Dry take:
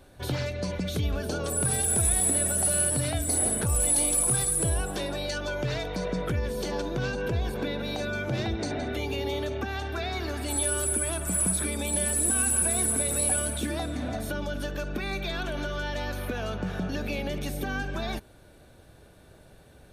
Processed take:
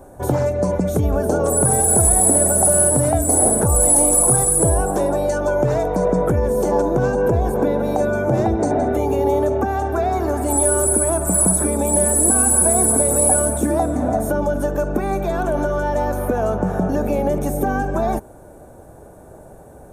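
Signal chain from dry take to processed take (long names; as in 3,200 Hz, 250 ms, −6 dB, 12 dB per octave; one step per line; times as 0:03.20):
drawn EQ curve 110 Hz 0 dB, 840 Hz +8 dB, 3,000 Hz −18 dB, 4,400 Hz −18 dB, 7,000 Hz +1 dB
level +8.5 dB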